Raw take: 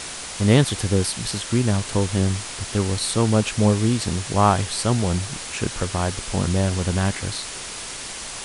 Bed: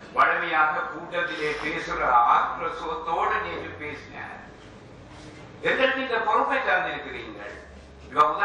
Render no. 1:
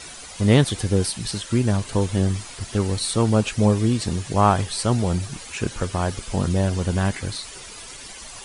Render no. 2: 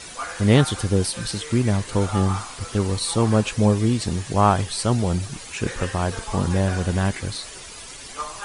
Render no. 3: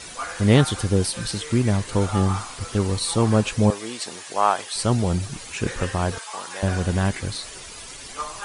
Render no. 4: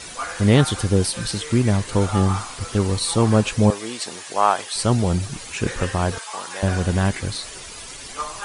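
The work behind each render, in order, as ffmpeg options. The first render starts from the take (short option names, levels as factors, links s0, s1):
-af "afftdn=nr=11:nf=-34"
-filter_complex "[1:a]volume=0.237[s0];[0:a][s0]amix=inputs=2:normalize=0"
-filter_complex "[0:a]asettb=1/sr,asplit=3[s0][s1][s2];[s0]atrim=end=3.704[s3];[s1]atrim=start=3.7:end=4.76,asetpts=PTS-STARTPTS,afade=t=in:d=0.004:c=qsin,afade=t=out:st=1.056:d=0.004:c=qsin,highpass=570[s4];[s2]atrim=start=4.756[s5];[s3][s4]acrossfade=d=0.004:c1=hsin:c2=qsin[s6];[s6][s5]acrossfade=d=0.004:c1=qsin:c2=hsin,asettb=1/sr,asplit=3[s7][s8][s9];[s7]atrim=end=6.184[s10];[s8]atrim=start=6.18:end=6.63,asetpts=PTS-STARTPTS,afade=t=in:d=0.004:c=qsin,afade=t=out:st=0.446:d=0.004:c=qsin,highpass=940[s11];[s9]atrim=start=6.626[s12];[s10][s11]acrossfade=d=0.004:c1=hsin:c2=qsin[s13];[s13][s12]acrossfade=d=0.004:c1=qsin:c2=hsin"
-af "volume=1.26,alimiter=limit=0.708:level=0:latency=1"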